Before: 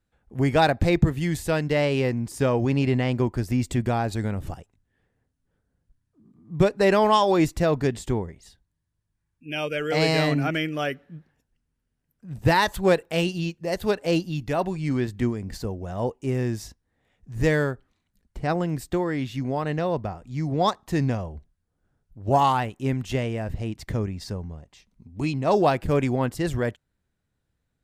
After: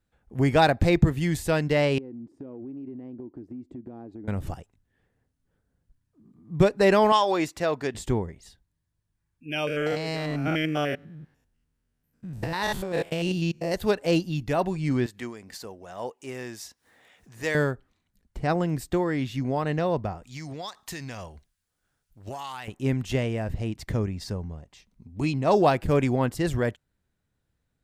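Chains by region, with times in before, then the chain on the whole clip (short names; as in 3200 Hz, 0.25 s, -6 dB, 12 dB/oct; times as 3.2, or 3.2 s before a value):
1.98–4.28 band-pass 300 Hz, Q 3.5 + compressor, threshold -36 dBFS
7.12–7.95 HPF 580 Hz 6 dB/oct + high shelf 9700 Hz -7.5 dB
9.67–13.74 stepped spectrum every 0.1 s + negative-ratio compressor -27 dBFS
15.06–17.55 HPF 1000 Hz 6 dB/oct + upward compressor, threshold -43 dBFS
20.23–22.68 tilt shelf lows -9.5 dB, about 1100 Hz + compressor 12:1, threshold -32 dBFS
whole clip: dry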